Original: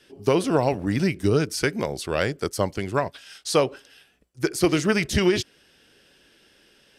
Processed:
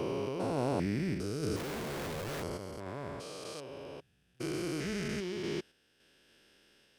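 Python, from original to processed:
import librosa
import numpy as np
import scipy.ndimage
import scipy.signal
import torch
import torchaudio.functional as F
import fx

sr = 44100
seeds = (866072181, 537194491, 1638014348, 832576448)

y = fx.spec_steps(x, sr, hold_ms=400)
y = fx.tremolo_random(y, sr, seeds[0], hz=3.5, depth_pct=55)
y = fx.schmitt(y, sr, flips_db=-43.0, at=(1.56, 2.43))
y = y * 10.0 ** (-5.0 / 20.0)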